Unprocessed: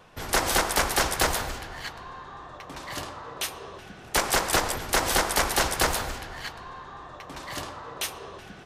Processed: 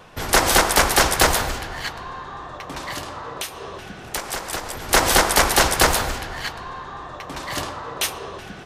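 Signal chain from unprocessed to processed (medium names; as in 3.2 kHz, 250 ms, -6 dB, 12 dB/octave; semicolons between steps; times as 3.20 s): 2.90–4.91 s: compression 4:1, threshold -35 dBFS, peak gain reduction 14 dB; trim +7.5 dB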